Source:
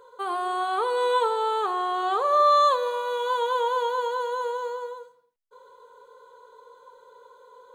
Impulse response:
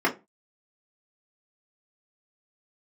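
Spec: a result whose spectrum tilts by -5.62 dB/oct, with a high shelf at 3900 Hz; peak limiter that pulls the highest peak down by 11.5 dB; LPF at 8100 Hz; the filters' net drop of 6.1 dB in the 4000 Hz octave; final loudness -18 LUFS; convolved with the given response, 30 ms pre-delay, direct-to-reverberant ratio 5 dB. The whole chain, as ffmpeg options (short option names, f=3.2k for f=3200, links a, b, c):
-filter_complex "[0:a]lowpass=8.1k,highshelf=f=3.9k:g=-6,equalizer=f=4k:t=o:g=-4,alimiter=limit=-23.5dB:level=0:latency=1,asplit=2[a][b];[1:a]atrim=start_sample=2205,adelay=30[c];[b][c]afir=irnorm=-1:irlink=0,volume=-20dB[d];[a][d]amix=inputs=2:normalize=0,volume=11.5dB"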